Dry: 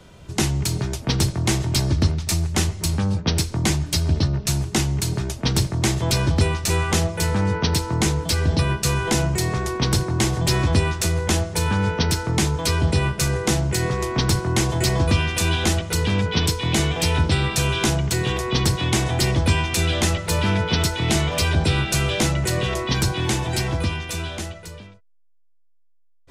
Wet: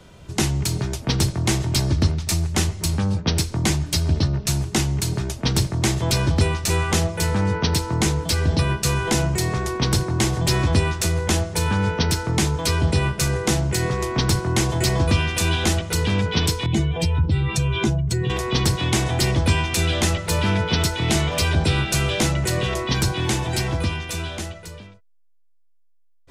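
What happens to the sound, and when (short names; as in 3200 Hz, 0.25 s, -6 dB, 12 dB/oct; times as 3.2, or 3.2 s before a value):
16.66–18.3 spectral contrast raised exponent 1.7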